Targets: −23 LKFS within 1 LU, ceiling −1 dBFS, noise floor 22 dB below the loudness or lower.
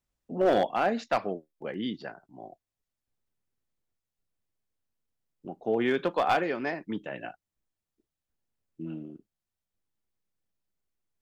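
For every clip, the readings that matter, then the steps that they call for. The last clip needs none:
share of clipped samples 0.3%; peaks flattened at −17.5 dBFS; integrated loudness −29.5 LKFS; sample peak −17.5 dBFS; target loudness −23.0 LKFS
→ clipped peaks rebuilt −17.5 dBFS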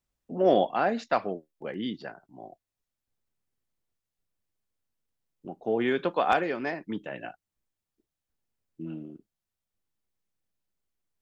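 share of clipped samples 0.0%; integrated loudness −28.5 LKFS; sample peak −8.5 dBFS; target loudness −23.0 LKFS
→ level +5.5 dB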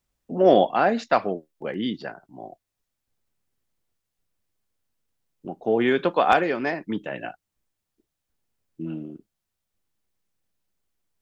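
integrated loudness −23.0 LKFS; sample peak −3.0 dBFS; background noise floor −82 dBFS

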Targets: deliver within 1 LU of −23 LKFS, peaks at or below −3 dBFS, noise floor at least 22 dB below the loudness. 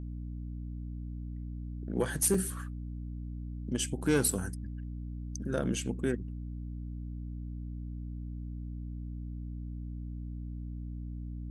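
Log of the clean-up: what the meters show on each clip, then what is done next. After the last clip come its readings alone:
number of dropouts 2; longest dropout 3.3 ms; mains hum 60 Hz; hum harmonics up to 300 Hz; level of the hum −36 dBFS; integrated loudness −36.0 LKFS; sample peak −15.0 dBFS; target loudness −23.0 LKFS
→ repair the gap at 0:02.34/0:04.31, 3.3 ms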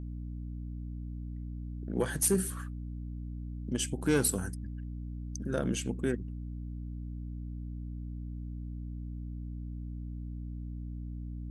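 number of dropouts 0; mains hum 60 Hz; hum harmonics up to 300 Hz; level of the hum −37 dBFS
→ mains-hum notches 60/120/180/240/300 Hz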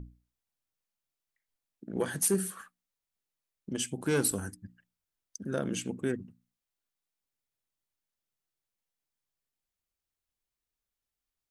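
mains hum none found; integrated loudness −32.0 LKFS; sample peak −14.5 dBFS; target loudness −23.0 LKFS
→ level +9 dB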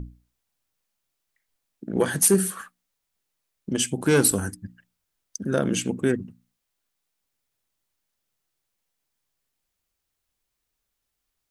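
integrated loudness −23.0 LKFS; sample peak −5.5 dBFS; background noise floor −81 dBFS

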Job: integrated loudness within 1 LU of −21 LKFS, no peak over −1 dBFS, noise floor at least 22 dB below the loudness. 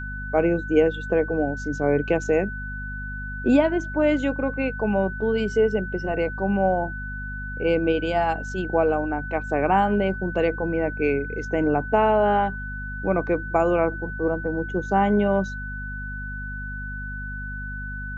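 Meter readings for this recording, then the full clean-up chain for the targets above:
mains hum 50 Hz; hum harmonics up to 250 Hz; level of the hum −32 dBFS; interfering tone 1,500 Hz; level of the tone −33 dBFS; integrated loudness −24.0 LKFS; sample peak −6.5 dBFS; target loudness −21.0 LKFS
→ hum removal 50 Hz, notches 5
notch filter 1,500 Hz, Q 30
level +3 dB

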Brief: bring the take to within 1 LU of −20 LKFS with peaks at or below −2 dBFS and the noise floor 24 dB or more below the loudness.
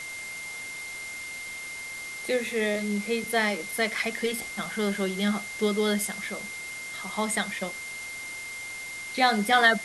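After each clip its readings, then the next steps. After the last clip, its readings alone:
interfering tone 2,100 Hz; level of the tone −36 dBFS; background noise floor −38 dBFS; target noise floor −53 dBFS; integrated loudness −28.5 LKFS; sample peak −7.5 dBFS; target loudness −20.0 LKFS
→ notch filter 2,100 Hz, Q 30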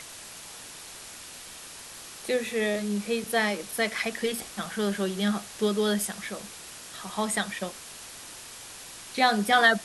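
interfering tone none found; background noise floor −44 dBFS; target noise floor −52 dBFS
→ noise reduction from a noise print 8 dB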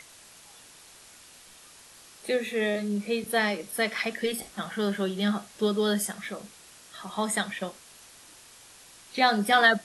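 background noise floor −52 dBFS; integrated loudness −27.5 LKFS; sample peak −8.5 dBFS; target loudness −20.0 LKFS
→ level +7.5 dB
brickwall limiter −2 dBFS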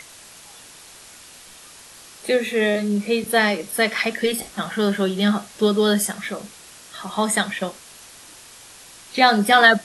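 integrated loudness −20.0 LKFS; sample peak −2.0 dBFS; background noise floor −45 dBFS

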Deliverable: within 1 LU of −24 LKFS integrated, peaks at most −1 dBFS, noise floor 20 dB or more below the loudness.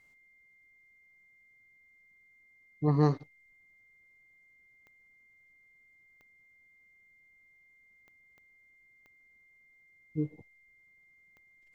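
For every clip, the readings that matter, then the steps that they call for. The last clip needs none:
number of clicks 6; interfering tone 2,100 Hz; level of the tone −61 dBFS; integrated loudness −31.0 LKFS; sample peak −12.5 dBFS; target loudness −24.0 LKFS
→ click removal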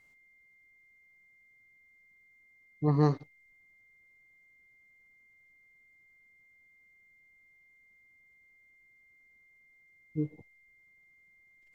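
number of clicks 0; interfering tone 2,100 Hz; level of the tone −61 dBFS
→ notch filter 2,100 Hz, Q 30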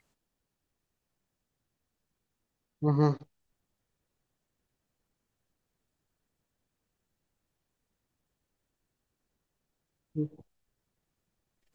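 interfering tone none found; integrated loudness −31.0 LKFS; sample peak −12.5 dBFS; target loudness −24.0 LKFS
→ level +7 dB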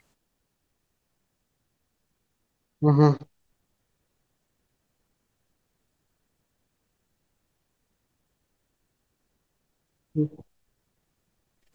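integrated loudness −24.0 LKFS; sample peak −5.5 dBFS; background noise floor −78 dBFS

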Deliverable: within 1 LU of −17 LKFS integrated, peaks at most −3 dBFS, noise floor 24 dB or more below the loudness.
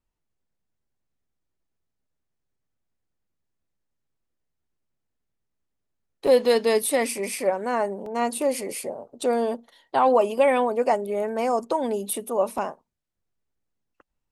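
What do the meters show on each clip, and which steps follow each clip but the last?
number of dropouts 3; longest dropout 2.9 ms; integrated loudness −24.0 LKFS; sample peak −8.0 dBFS; target loudness −17.0 LKFS
→ repair the gap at 0:06.27/0:08.06/0:12.58, 2.9 ms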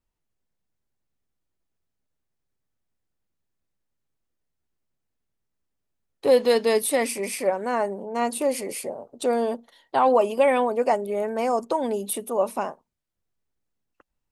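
number of dropouts 0; integrated loudness −24.0 LKFS; sample peak −8.0 dBFS; target loudness −17.0 LKFS
→ level +7 dB
brickwall limiter −3 dBFS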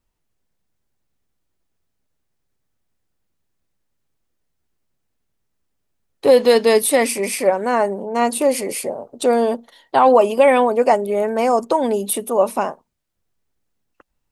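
integrated loudness −17.0 LKFS; sample peak −3.0 dBFS; background noise floor −73 dBFS

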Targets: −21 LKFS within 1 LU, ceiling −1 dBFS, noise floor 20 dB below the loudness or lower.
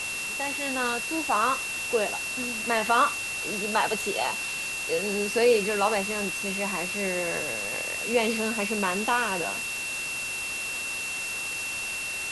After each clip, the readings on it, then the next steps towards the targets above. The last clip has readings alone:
interfering tone 2,700 Hz; level of the tone −31 dBFS; background noise floor −33 dBFS; target noise floor −47 dBFS; integrated loudness −26.5 LKFS; sample peak −10.0 dBFS; target loudness −21.0 LKFS
→ notch filter 2,700 Hz, Q 30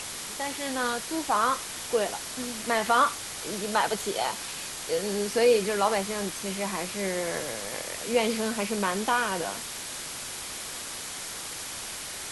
interfering tone none found; background noise floor −38 dBFS; target noise floor −49 dBFS
→ broadband denoise 11 dB, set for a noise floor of −38 dBFS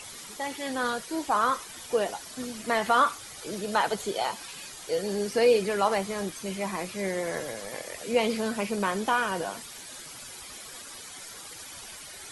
background noise floor −44 dBFS; target noise floor −49 dBFS
→ broadband denoise 6 dB, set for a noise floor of −44 dBFS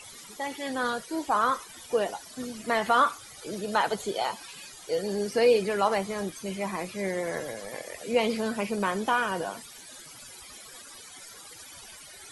background noise floor −47 dBFS; target noise floor −49 dBFS
→ broadband denoise 6 dB, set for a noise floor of −47 dBFS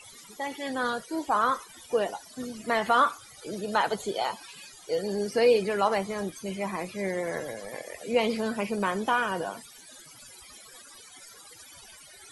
background noise floor −50 dBFS; integrated loudness −28.5 LKFS; sample peak −11.5 dBFS; target loudness −21.0 LKFS
→ level +7.5 dB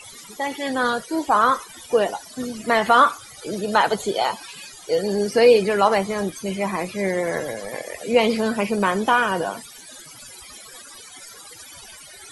integrated loudness −21.0 LKFS; sample peak −4.0 dBFS; background noise floor −43 dBFS

